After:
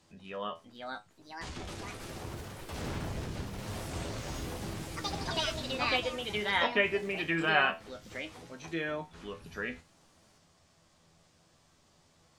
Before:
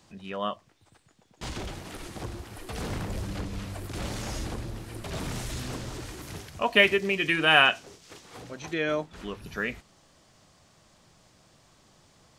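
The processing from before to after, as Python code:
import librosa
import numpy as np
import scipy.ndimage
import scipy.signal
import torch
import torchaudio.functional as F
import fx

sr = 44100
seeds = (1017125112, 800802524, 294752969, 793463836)

y = fx.env_lowpass_down(x, sr, base_hz=2200.0, full_db=-21.0)
y = fx.comb_fb(y, sr, f0_hz=83.0, decay_s=0.22, harmonics='all', damping=0.0, mix_pct=80)
y = fx.echo_pitch(y, sr, ms=554, semitones=4, count=3, db_per_echo=-3.0)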